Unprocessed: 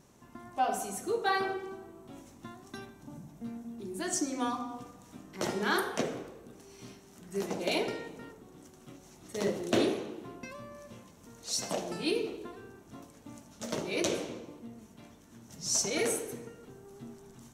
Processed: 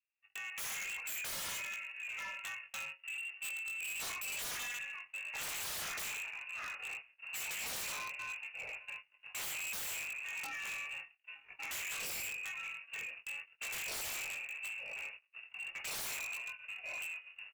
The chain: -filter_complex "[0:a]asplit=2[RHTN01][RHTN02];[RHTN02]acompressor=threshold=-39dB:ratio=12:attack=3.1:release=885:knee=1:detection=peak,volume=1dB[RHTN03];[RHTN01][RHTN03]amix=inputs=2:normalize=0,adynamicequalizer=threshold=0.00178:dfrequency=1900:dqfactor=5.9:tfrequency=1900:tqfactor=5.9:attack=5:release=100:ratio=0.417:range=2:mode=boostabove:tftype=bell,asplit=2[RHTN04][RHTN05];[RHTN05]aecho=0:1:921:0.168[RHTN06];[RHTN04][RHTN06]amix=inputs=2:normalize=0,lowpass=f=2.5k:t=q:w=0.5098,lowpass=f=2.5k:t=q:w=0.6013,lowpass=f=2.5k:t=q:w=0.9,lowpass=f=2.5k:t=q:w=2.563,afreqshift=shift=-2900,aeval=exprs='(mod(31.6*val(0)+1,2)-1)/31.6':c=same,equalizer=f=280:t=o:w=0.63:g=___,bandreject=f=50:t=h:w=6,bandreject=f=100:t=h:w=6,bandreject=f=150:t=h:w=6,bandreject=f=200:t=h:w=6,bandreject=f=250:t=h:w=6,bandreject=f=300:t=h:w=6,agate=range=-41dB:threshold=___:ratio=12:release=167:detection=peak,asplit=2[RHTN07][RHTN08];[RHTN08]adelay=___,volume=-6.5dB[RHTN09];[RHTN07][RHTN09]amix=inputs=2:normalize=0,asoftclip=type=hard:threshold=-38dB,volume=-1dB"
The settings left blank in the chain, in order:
-10.5, -44dB, 20